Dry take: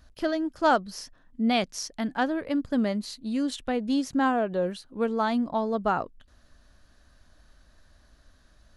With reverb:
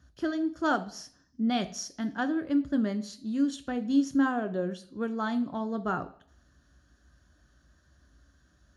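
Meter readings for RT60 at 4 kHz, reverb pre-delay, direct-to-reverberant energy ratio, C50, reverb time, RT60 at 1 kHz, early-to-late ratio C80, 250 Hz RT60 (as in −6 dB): 0.65 s, 3 ms, 8.0 dB, 16.5 dB, 0.55 s, 0.55 s, 20.0 dB, 0.55 s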